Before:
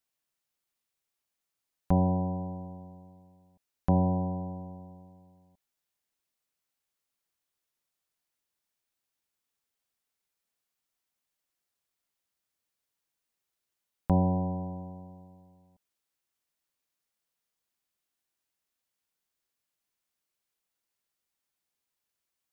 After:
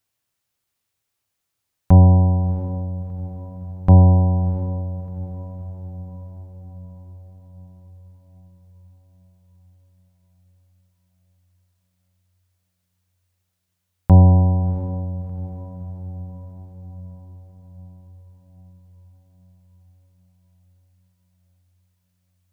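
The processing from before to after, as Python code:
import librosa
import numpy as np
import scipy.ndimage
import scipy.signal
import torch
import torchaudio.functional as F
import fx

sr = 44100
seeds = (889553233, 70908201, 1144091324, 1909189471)

y = fx.peak_eq(x, sr, hz=96.0, db=14.5, octaves=0.68)
y = fx.echo_diffused(y, sr, ms=689, feedback_pct=57, wet_db=-14)
y = F.gain(torch.from_numpy(y), 7.0).numpy()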